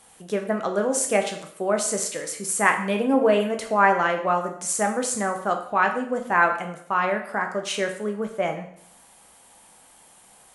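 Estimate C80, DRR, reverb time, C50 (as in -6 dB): 12.0 dB, 4.0 dB, 0.65 s, 9.0 dB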